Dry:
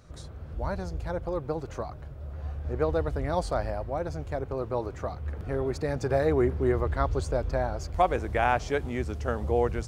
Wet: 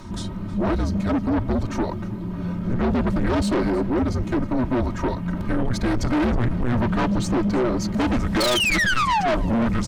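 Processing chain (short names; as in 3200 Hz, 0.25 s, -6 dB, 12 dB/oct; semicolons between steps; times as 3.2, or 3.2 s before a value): frequency shift -250 Hz; reverse; upward compressor, threshold -36 dBFS; reverse; painted sound fall, 8.4–9.35, 590–4500 Hz -27 dBFS; comb 3.2 ms, depth 87%; soft clip -26 dBFS, distortion -8 dB; tone controls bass +3 dB, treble -4 dB; sine folder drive 14 dB, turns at -12.5 dBFS; on a send: echo 0.318 s -20 dB; on the sum: gain -5.5 dB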